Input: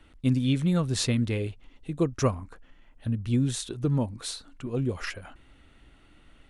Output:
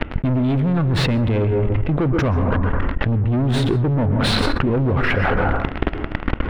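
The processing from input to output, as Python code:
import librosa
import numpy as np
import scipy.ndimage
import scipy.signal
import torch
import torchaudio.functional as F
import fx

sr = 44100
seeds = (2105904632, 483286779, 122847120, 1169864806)

y = fx.wiener(x, sr, points=9)
y = fx.high_shelf(y, sr, hz=5000.0, db=7.0)
y = fx.leveller(y, sr, passes=5)
y = fx.air_absorb(y, sr, metres=470.0)
y = fx.rev_plate(y, sr, seeds[0], rt60_s=0.55, hf_ratio=0.4, predelay_ms=115, drr_db=11.5)
y = fx.env_flatten(y, sr, amount_pct=100)
y = y * librosa.db_to_amplitude(-6.0)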